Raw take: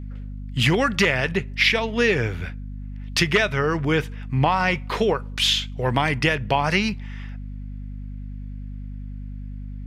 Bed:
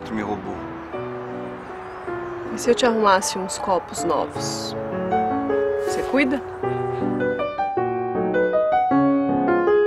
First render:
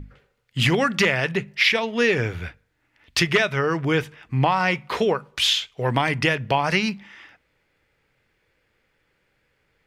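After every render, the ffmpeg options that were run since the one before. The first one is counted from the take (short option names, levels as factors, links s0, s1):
-af "bandreject=f=50:t=h:w=6,bandreject=f=100:t=h:w=6,bandreject=f=150:t=h:w=6,bandreject=f=200:t=h:w=6,bandreject=f=250:t=h:w=6"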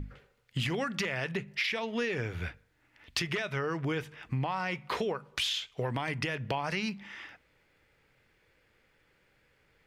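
-af "alimiter=limit=0.282:level=0:latency=1:release=23,acompressor=threshold=0.0282:ratio=4"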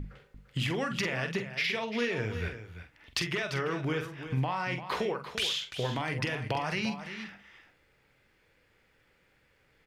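-filter_complex "[0:a]asplit=2[s0][s1];[s1]adelay=46,volume=0.398[s2];[s0][s2]amix=inputs=2:normalize=0,asplit=2[s3][s4];[s4]aecho=0:1:344:0.282[s5];[s3][s5]amix=inputs=2:normalize=0"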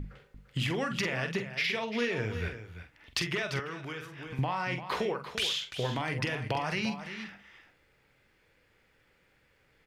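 -filter_complex "[0:a]asettb=1/sr,asplit=3[s0][s1][s2];[s0]atrim=end=3.594[s3];[s1]atrim=start=3.59:end=4.39,asetpts=PTS-STARTPTS,afade=t=in:d=0.004:c=qsin,afade=t=out:st=0.796:d=0.004:c=qsin,acrossover=split=330|1000[s4][s5][s6];[s4]acompressor=threshold=0.00562:ratio=4[s7];[s5]acompressor=threshold=0.00447:ratio=4[s8];[s6]acompressor=threshold=0.0112:ratio=4[s9];[s7][s8][s9]amix=inputs=3:normalize=0[s10];[s2]atrim=start=4.386[s11];[s3][s10]acrossfade=d=0.004:c1=hsin:c2=qsin[s12];[s12][s11]acrossfade=d=0.004:c1=qsin:c2=hsin"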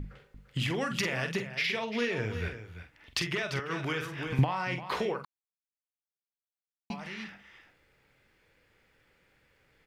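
-filter_complex "[0:a]asettb=1/sr,asplit=3[s0][s1][s2];[s0]atrim=end=0.814[s3];[s1]atrim=start=0.81:end=1.47,asetpts=PTS-STARTPTS,afade=t=in:d=0.004:c=qsin,afade=t=out:st=0.656:d=0.004:c=qsin,highshelf=f=7000:g=7.5[s4];[s2]atrim=start=1.466[s5];[s3][s4]acrossfade=d=0.004:c1=hsin:c2=qsin[s6];[s6][s5]acrossfade=d=0.004:c1=qsin:c2=hsin,asplit=3[s7][s8][s9];[s7]afade=t=out:st=3.69:d=0.02[s10];[s8]acontrast=79,afade=t=in:st=3.69:d=0.02,afade=t=out:st=4.43:d=0.02[s11];[s9]afade=t=in:st=4.43:d=0.02[s12];[s10][s11][s12]amix=inputs=3:normalize=0,asplit=3[s13][s14][s15];[s13]atrim=end=5.25,asetpts=PTS-STARTPTS,afade=t=out:st=5.246:d=0.004:c=hsin[s16];[s14]atrim=start=5.25:end=6.9,asetpts=PTS-STARTPTS,volume=0[s17];[s15]atrim=start=6.9,asetpts=PTS-STARTPTS,afade=t=in:d=0.004:c=hsin[s18];[s16][s17][s18]concat=n=3:v=0:a=1"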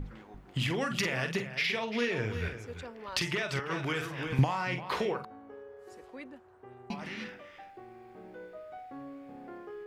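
-filter_complex "[1:a]volume=0.0447[s0];[0:a][s0]amix=inputs=2:normalize=0"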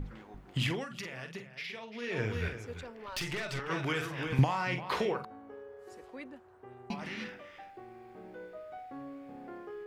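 -filter_complex "[0:a]asettb=1/sr,asplit=3[s0][s1][s2];[s0]atrim=end=2.794[s3];[s1]atrim=start=2.79:end=3.68,asetpts=PTS-STARTPTS,afade=t=in:d=0.004:c=qsin,afade=t=out:st=0.886:d=0.004:c=qsin,aeval=exprs='(tanh(35.5*val(0)+0.35)-tanh(0.35))/35.5':c=same[s4];[s2]atrim=start=3.676[s5];[s3][s4]acrossfade=d=0.004:c1=hsin:c2=qsin[s6];[s6][s5]acrossfade=d=0.004:c1=qsin:c2=hsin,asplit=3[s7][s8][s9];[s7]atrim=end=0.86,asetpts=PTS-STARTPTS,afade=t=out:st=0.68:d=0.18:silence=0.281838[s10];[s8]atrim=start=0.86:end=2.02,asetpts=PTS-STARTPTS,volume=0.282[s11];[s9]atrim=start=2.02,asetpts=PTS-STARTPTS,afade=t=in:d=0.18:silence=0.281838[s12];[s10][s11][s12]concat=n=3:v=0:a=1"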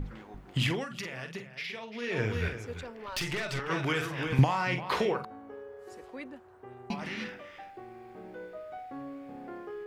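-af "volume=1.41"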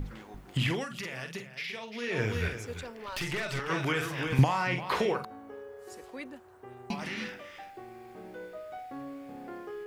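-filter_complex "[0:a]acrossover=split=2800[s0][s1];[s1]acompressor=threshold=0.00501:ratio=4:attack=1:release=60[s2];[s0][s2]amix=inputs=2:normalize=0,highshelf=f=4600:g=10.5"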